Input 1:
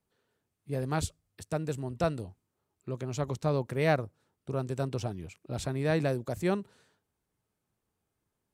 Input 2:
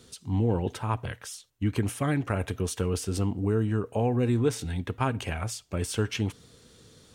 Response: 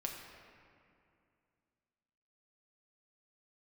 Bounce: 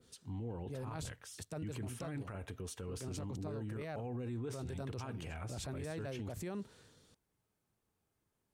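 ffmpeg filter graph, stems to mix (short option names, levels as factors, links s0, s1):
-filter_complex "[0:a]volume=0.891[s0];[1:a]adynamicequalizer=threshold=0.00708:dfrequency=2300:dqfactor=0.7:tfrequency=2300:tqfactor=0.7:attack=5:release=100:ratio=0.375:range=1.5:mode=cutabove:tftype=highshelf,volume=0.282,asplit=2[s1][s2];[s2]apad=whole_len=376328[s3];[s0][s3]sidechaincompress=threshold=0.00562:ratio=8:attack=36:release=170[s4];[s4][s1]amix=inputs=2:normalize=0,alimiter=level_in=3.35:limit=0.0631:level=0:latency=1:release=16,volume=0.299"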